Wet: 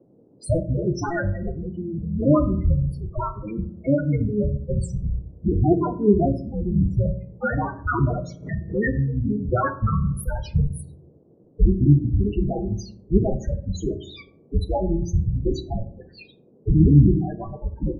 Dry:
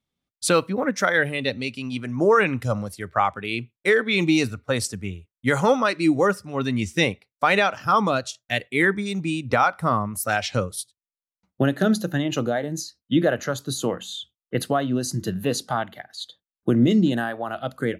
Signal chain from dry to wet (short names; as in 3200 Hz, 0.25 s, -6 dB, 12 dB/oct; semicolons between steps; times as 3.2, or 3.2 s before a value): cycle switcher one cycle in 3, inverted; low shelf 200 Hz +10.5 dB; in parallel at -10.5 dB: crossover distortion -32 dBFS; 3.95–4.38 on the sum: negative-ratio compressor -17 dBFS, ratio -0.5; loudest bins only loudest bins 4; on a send at -7.5 dB: reverb RT60 0.60 s, pre-delay 3 ms; on the sum: band noise 110–480 Hz -55 dBFS; 8–9 backwards sustainer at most 140 dB/s